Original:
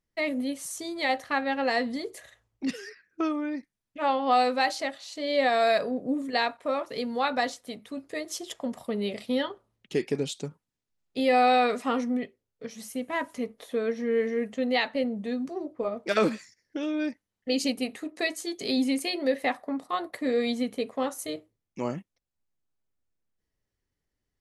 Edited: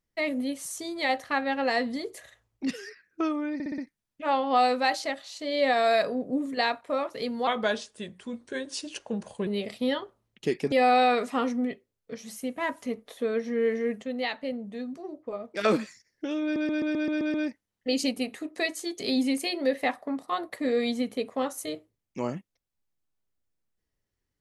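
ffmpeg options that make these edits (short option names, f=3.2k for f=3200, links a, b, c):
-filter_complex "[0:a]asplit=17[a][b][c][d][e][f][g][h][i][j][k][l][m][n][o][p][q];[a]atrim=end=3.602[r];[b]atrim=start=3.538:end=3.602[s];[c]atrim=start=3.538:end=3.602[t];[d]atrim=start=3.538:end=3.602[u];[e]atrim=start=3.538:end=7.234[v];[f]atrim=start=7.23:end=8.95,asetpts=PTS-STARTPTS,asetrate=37926,aresample=44100[w];[g]atrim=start=8.946:end=10.202[x];[h]atrim=start=11.238:end=14.552[y];[i]atrim=start=14.548:end=16.132,asetpts=PTS-STARTPTS,volume=-5dB[z];[j]atrim=start=16.128:end=17.082[aa];[k]atrim=start=16.948:end=17.082[ab];[l]atrim=start=16.948:end=17.082[ac];[m]atrim=start=16.948:end=17.082[ad];[n]atrim=start=16.948:end=17.082[ae];[o]atrim=start=16.948:end=17.082[af];[p]atrim=start=16.948:end=17.082[ag];[q]atrim=start=16.948[ah];[r][s]acrossfade=d=0.004:c1=hsin:c2=hsin[ai];[ai][t]acrossfade=d=0.004:c1=hsin:c2=hsin[aj];[aj][u]acrossfade=d=0.004:c1=hsin:c2=hsin[ak];[ak][v]acrossfade=d=0.004:c1=hsin:c2=hsin[al];[al][w]acrossfade=d=0.004:c1=hsin:c2=hsin[am];[am][x]acrossfade=d=0.004:c1=hsin:c2=hsin[an];[an][y]acrossfade=d=0.004:c1=hsin:c2=hsin[ao];[ao][z]acrossfade=d=0.004:c1=hsin:c2=hsin[ap];[ap][aa]acrossfade=d=0.004:c1=hsin:c2=hsin[aq];[aq][ab]acrossfade=d=0.004:c1=hsin:c2=hsin[ar];[ar][ac]acrossfade=d=0.004:c1=hsin:c2=hsin[as];[as][ad]acrossfade=d=0.004:c1=hsin:c2=hsin[at];[at][ae]acrossfade=d=0.004:c1=hsin:c2=hsin[au];[au][af]acrossfade=d=0.004:c1=hsin:c2=hsin[av];[av][ag]acrossfade=d=0.004:c1=hsin:c2=hsin[aw];[aw][ah]acrossfade=d=0.004:c1=hsin:c2=hsin"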